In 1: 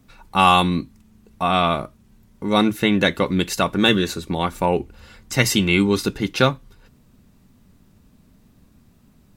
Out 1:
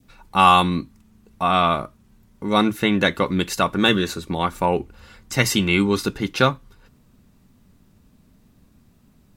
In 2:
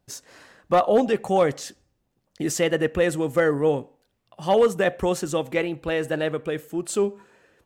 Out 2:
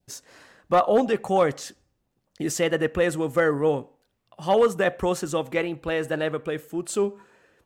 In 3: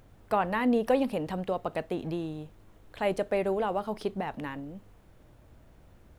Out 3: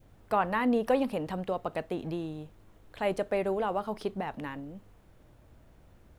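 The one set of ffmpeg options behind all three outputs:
-af "adynamicequalizer=threshold=0.0224:dfrequency=1200:dqfactor=1.6:tfrequency=1200:tqfactor=1.6:attack=5:release=100:ratio=0.375:range=2:mode=boostabove:tftype=bell,volume=-1.5dB"

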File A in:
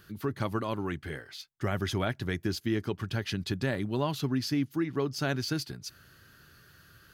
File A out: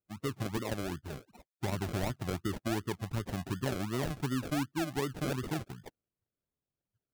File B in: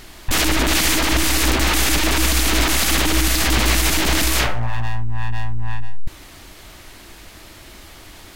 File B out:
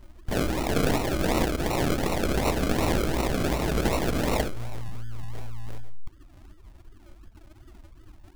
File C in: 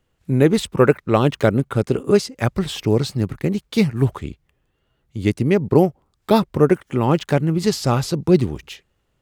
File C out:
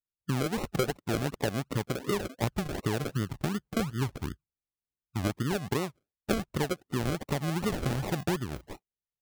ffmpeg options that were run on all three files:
-filter_complex "[0:a]afftdn=nr=34:nf=-36,acrossover=split=2800[a][b];[a]acompressor=threshold=-23dB:ratio=16[c];[c][b]amix=inputs=2:normalize=0,acrusher=samples=38:mix=1:aa=0.000001:lfo=1:lforange=22.8:lforate=2.7,volume=-3dB"

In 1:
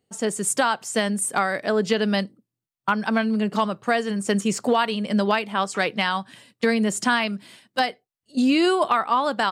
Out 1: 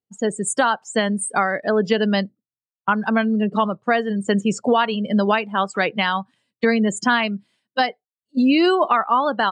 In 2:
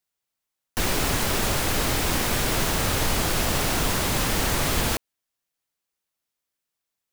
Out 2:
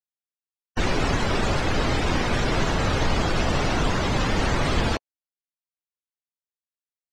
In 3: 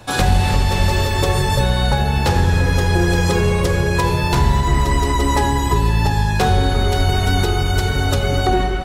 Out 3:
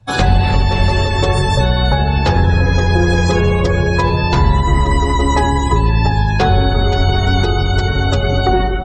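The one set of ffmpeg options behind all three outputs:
-af "lowpass=9.1k,afftdn=nr=23:nf=-30,volume=3dB"

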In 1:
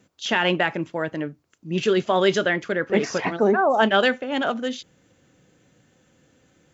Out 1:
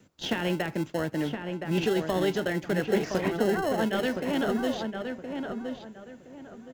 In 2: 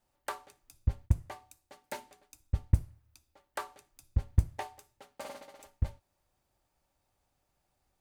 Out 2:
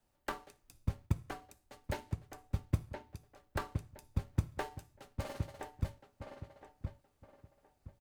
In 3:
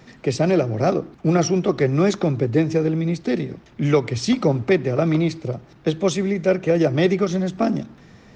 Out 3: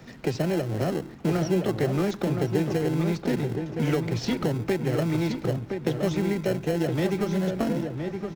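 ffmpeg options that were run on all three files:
-filter_complex "[0:a]acrossover=split=100|410|5500[a][b][c][d];[a]acompressor=threshold=-43dB:ratio=4[e];[b]acompressor=threshold=-29dB:ratio=4[f];[c]acompressor=threshold=-31dB:ratio=4[g];[d]acompressor=threshold=-57dB:ratio=4[h];[e][f][g][h]amix=inputs=4:normalize=0,asplit=2[i][j];[j]acrusher=samples=37:mix=1:aa=0.000001,volume=-6.5dB[k];[i][k]amix=inputs=2:normalize=0,asplit=2[l][m];[m]adelay=1018,lowpass=f=2.1k:p=1,volume=-5.5dB,asplit=2[n][o];[o]adelay=1018,lowpass=f=2.1k:p=1,volume=0.28,asplit=2[p][q];[q]adelay=1018,lowpass=f=2.1k:p=1,volume=0.28,asplit=2[r][s];[s]adelay=1018,lowpass=f=2.1k:p=1,volume=0.28[t];[l][n][p][r][t]amix=inputs=5:normalize=0,volume=-1.5dB"

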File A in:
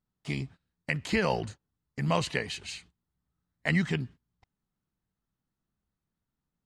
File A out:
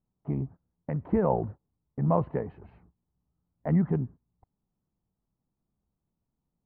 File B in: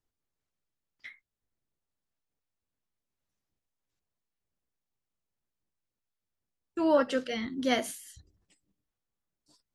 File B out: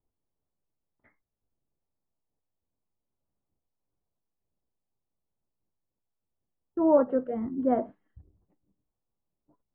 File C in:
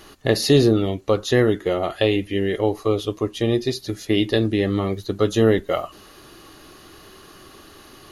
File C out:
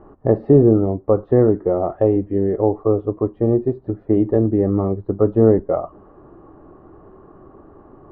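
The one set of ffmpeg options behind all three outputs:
-af "lowpass=f=1k:w=0.5412,lowpass=f=1k:w=1.3066,volume=3.5dB"

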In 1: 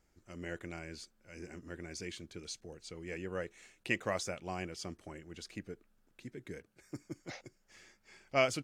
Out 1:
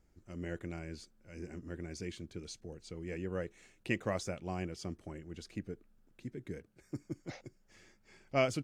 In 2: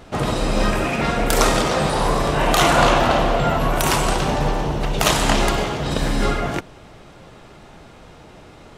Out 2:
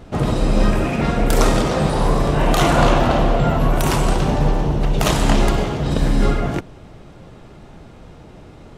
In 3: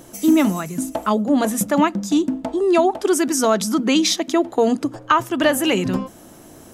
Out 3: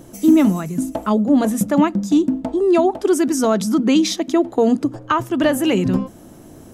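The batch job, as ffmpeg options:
-af "lowshelf=f=480:g=9.5,volume=-4dB"

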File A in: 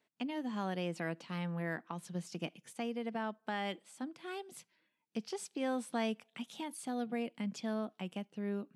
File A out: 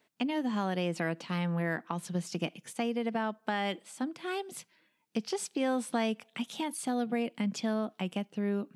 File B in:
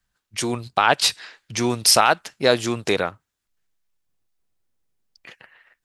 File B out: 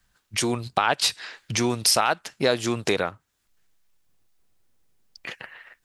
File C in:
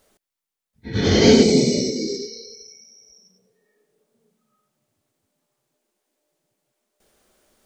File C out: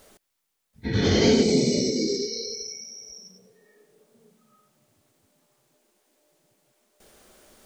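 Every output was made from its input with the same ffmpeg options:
-af "acompressor=threshold=-36dB:ratio=2,volume=8dB"

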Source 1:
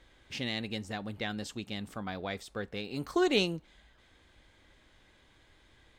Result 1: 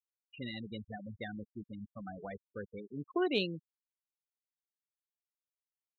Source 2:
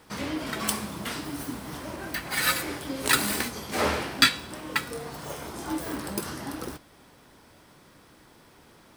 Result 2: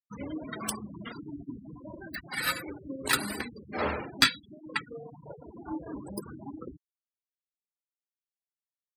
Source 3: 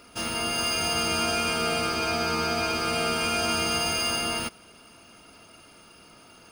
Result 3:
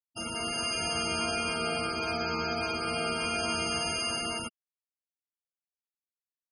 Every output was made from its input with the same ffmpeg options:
-af "afftfilt=real='re*gte(hypot(re,im),0.0447)':imag='im*gte(hypot(re,im),0.0447)':win_size=1024:overlap=0.75,aeval=exprs='0.668*(cos(1*acos(clip(val(0)/0.668,-1,1)))-cos(1*PI/2))+0.0668*(cos(2*acos(clip(val(0)/0.668,-1,1)))-cos(2*PI/2))+0.106*(cos(3*acos(clip(val(0)/0.668,-1,1)))-cos(3*PI/2))+0.0211*(cos(4*acos(clip(val(0)/0.668,-1,1)))-cos(4*PI/2))+0.00944*(cos(5*acos(clip(val(0)/0.668,-1,1)))-cos(5*PI/2))':c=same"

